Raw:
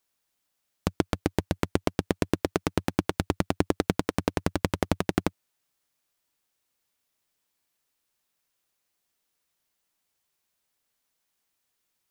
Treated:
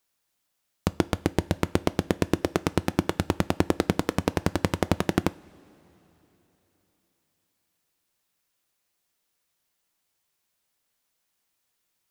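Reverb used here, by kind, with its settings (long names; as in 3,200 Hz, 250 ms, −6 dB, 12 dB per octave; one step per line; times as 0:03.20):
coupled-rooms reverb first 0.32 s, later 3.8 s, from −18 dB, DRR 15.5 dB
level +1.5 dB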